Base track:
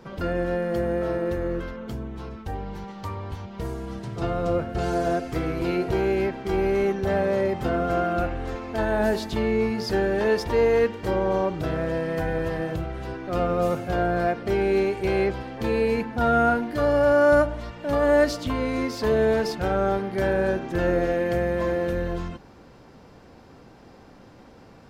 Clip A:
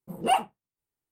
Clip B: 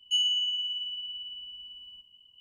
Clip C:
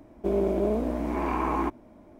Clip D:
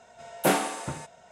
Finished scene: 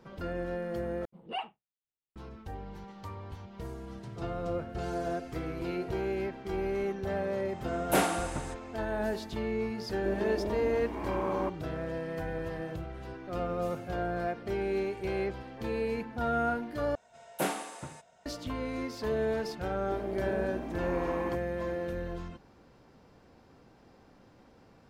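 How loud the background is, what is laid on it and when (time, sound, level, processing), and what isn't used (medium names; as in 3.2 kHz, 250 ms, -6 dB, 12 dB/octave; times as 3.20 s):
base track -9.5 dB
1.05 s: replace with A -14.5 dB + resonant low-pass 3.3 kHz, resonance Q 2.4
7.48 s: add D -3.5 dB
9.80 s: add C -9 dB
16.95 s: replace with D -8.5 dB
19.66 s: add C -11 dB
not used: B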